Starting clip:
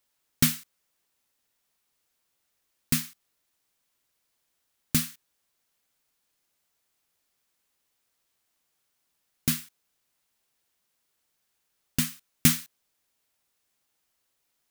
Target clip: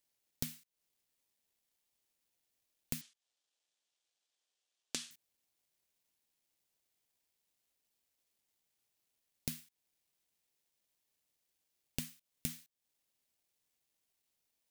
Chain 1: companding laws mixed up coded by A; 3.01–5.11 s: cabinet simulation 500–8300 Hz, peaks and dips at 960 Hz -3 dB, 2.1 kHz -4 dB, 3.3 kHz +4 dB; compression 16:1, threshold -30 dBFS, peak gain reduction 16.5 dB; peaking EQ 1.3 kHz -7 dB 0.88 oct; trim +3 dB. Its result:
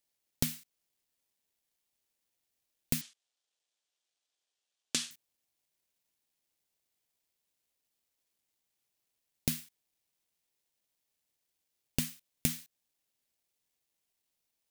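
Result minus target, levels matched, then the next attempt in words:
compression: peak gain reduction -9 dB
companding laws mixed up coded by A; 3.01–5.11 s: cabinet simulation 500–8300 Hz, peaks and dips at 960 Hz -3 dB, 2.1 kHz -4 dB, 3.3 kHz +4 dB; compression 16:1, threshold -39.5 dBFS, peak gain reduction 25.5 dB; peaking EQ 1.3 kHz -7 dB 0.88 oct; trim +3 dB

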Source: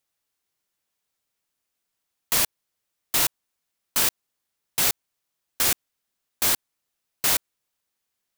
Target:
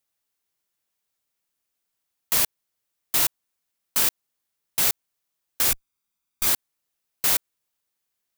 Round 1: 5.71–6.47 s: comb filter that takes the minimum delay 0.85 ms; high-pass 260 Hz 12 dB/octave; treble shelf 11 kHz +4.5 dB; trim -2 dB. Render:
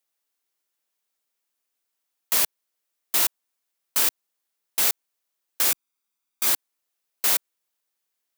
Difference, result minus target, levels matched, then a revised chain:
250 Hz band -3.0 dB
5.71–6.47 s: comb filter that takes the minimum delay 0.85 ms; treble shelf 11 kHz +4.5 dB; trim -2 dB

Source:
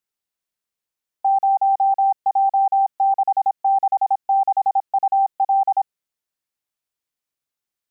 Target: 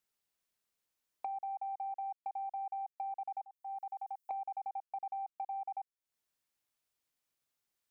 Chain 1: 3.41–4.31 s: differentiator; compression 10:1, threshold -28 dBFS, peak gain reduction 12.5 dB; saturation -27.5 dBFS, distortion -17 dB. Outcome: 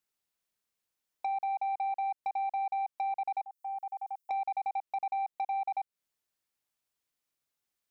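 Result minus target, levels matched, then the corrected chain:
compression: peak gain reduction -9.5 dB
3.41–4.31 s: differentiator; compression 10:1, threshold -38.5 dBFS, peak gain reduction 22 dB; saturation -27.5 dBFS, distortion -29 dB

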